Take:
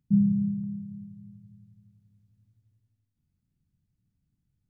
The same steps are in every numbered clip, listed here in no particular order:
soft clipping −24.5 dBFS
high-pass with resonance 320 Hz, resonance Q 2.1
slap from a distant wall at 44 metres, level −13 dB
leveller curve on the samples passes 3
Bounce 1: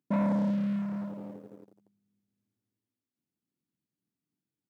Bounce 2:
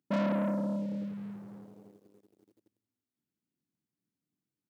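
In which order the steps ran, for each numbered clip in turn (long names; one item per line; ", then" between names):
slap from a distant wall, then leveller curve on the samples, then high-pass with resonance, then soft clipping
soft clipping, then slap from a distant wall, then leveller curve on the samples, then high-pass with resonance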